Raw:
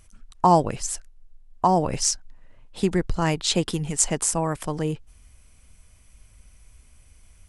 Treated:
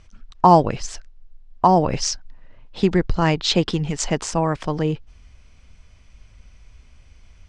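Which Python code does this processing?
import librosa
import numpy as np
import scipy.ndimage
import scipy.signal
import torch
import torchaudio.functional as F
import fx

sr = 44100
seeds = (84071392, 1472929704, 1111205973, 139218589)

y = scipy.signal.sosfilt(scipy.signal.butter(4, 5500.0, 'lowpass', fs=sr, output='sos'), x)
y = F.gain(torch.from_numpy(y), 4.5).numpy()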